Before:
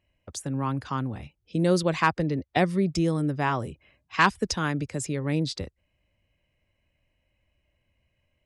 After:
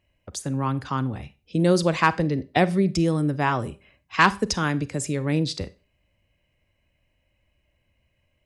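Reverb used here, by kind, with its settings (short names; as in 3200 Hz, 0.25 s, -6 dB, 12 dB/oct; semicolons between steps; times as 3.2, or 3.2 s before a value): Schroeder reverb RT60 0.32 s, combs from 31 ms, DRR 16 dB; gain +3 dB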